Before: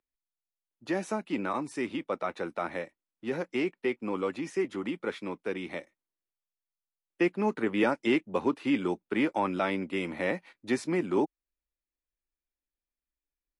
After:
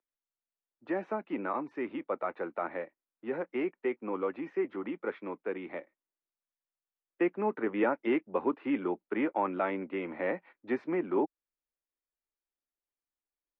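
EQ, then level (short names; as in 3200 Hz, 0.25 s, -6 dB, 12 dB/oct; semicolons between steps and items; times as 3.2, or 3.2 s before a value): air absorption 250 m; three-band isolator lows -13 dB, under 250 Hz, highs -23 dB, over 2400 Hz; high shelf 5800 Hz +9.5 dB; 0.0 dB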